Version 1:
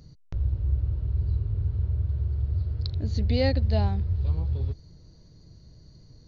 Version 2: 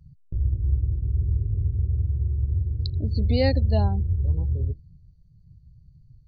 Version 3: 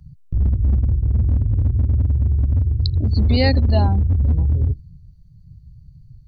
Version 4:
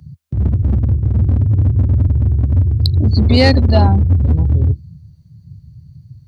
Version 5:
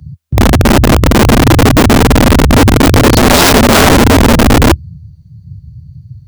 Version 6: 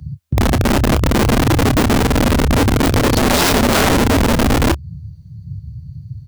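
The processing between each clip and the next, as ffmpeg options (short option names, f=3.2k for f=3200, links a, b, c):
-af "afftdn=nr=27:nf=-38,volume=2.5dB"
-filter_complex "[0:a]equalizer=f=460:t=o:w=0.68:g=-8.5,acrossover=split=320[a][b];[a]volume=20.5dB,asoftclip=hard,volume=-20.5dB[c];[c][b]amix=inputs=2:normalize=0,volume=8dB"
-af "highpass=f=81:w=0.5412,highpass=f=81:w=1.3066,acontrast=89,volume=1dB"
-af "lowshelf=f=140:g=8,aeval=exprs='(mod(1.58*val(0)+1,2)-1)/1.58':c=same,volume=2.5dB"
-filter_complex "[0:a]acompressor=threshold=-16dB:ratio=2.5,asplit=2[a][b];[b]adelay=29,volume=-13dB[c];[a][c]amix=inputs=2:normalize=0"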